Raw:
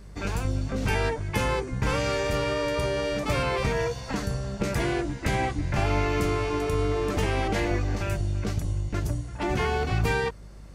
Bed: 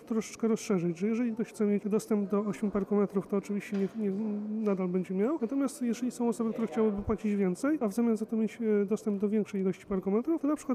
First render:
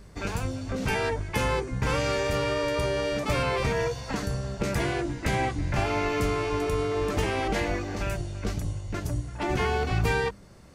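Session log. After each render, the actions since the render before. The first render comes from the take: de-hum 50 Hz, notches 7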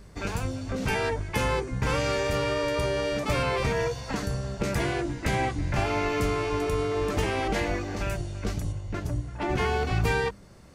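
8.72–9.58 high shelf 4800 Hz -8 dB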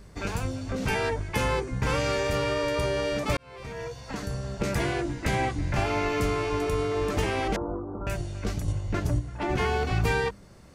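3.37–4.63 fade in; 7.56–8.07 rippled Chebyshev low-pass 1400 Hz, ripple 6 dB; 8.68–9.19 gain +4 dB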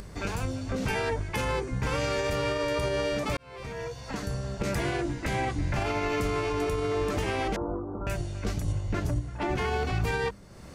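limiter -19.5 dBFS, peak gain reduction 6 dB; upward compressor, threshold -36 dBFS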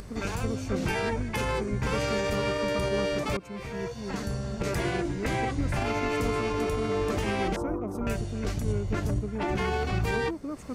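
add bed -6.5 dB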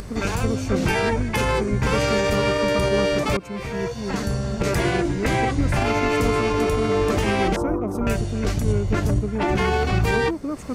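gain +7.5 dB

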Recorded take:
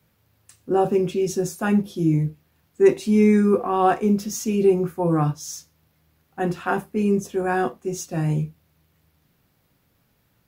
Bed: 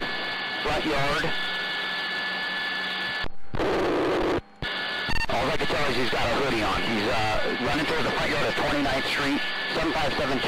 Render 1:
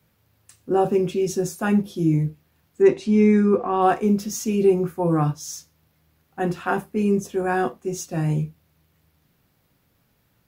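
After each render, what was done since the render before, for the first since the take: 2.82–3.82 air absorption 75 m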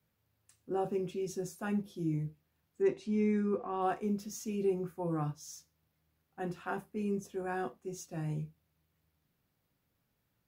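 gain -14 dB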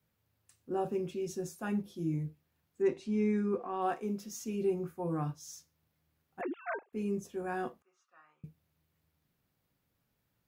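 3.57–4.4 bell 70 Hz -12.5 dB 1.7 oct; 6.41–6.93 sine-wave speech; 7.82–8.44 ladder band-pass 1300 Hz, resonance 80%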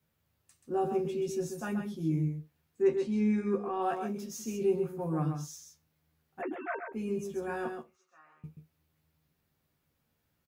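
doubler 13 ms -5.5 dB; echo 0.132 s -6.5 dB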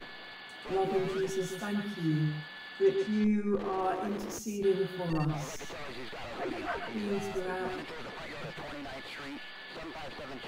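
add bed -17 dB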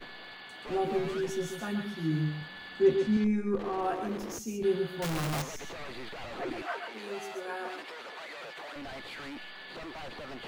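2.41–3.17 low shelf 240 Hz +10 dB; 5.02–5.42 infinite clipping; 6.62–8.76 HPF 460 Hz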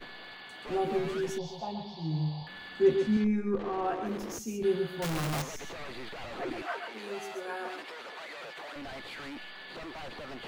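1.38–2.47 EQ curve 160 Hz 0 dB, 250 Hz -12 dB, 910 Hz +9 dB, 1400 Hz -24 dB, 4800 Hz +6 dB, 9300 Hz -28 dB, 14000 Hz -22 dB; 3.22–4.06 air absorption 63 m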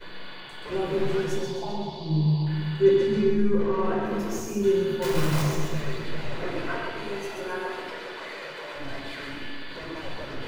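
on a send: split-band echo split 400 Hz, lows 0.413 s, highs 0.129 s, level -7.5 dB; on the sum: shoebox room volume 2700 m³, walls furnished, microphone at 4.9 m

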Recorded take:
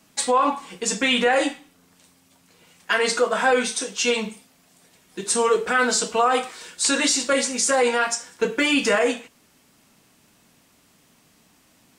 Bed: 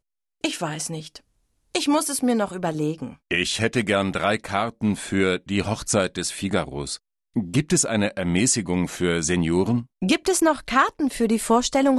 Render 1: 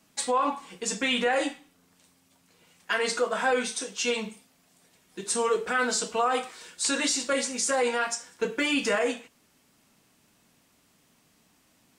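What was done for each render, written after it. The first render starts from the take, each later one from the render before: gain -6 dB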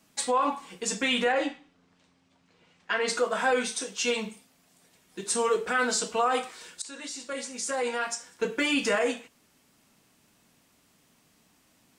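1.32–3.08 air absorption 130 m; 3.74–5.63 short-mantissa float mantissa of 6-bit; 6.82–8.53 fade in, from -19 dB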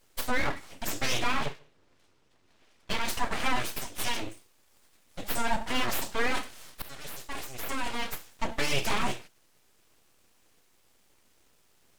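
octaver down 1 oct, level -1 dB; full-wave rectifier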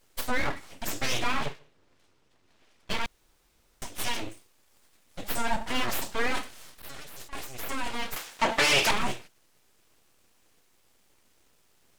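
3.06–3.82 room tone; 6.79–7.33 negative-ratio compressor -42 dBFS; 8.16–8.91 overdrive pedal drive 20 dB, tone 5300 Hz, clips at -13 dBFS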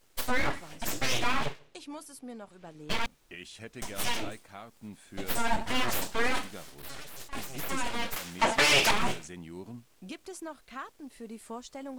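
add bed -22.5 dB

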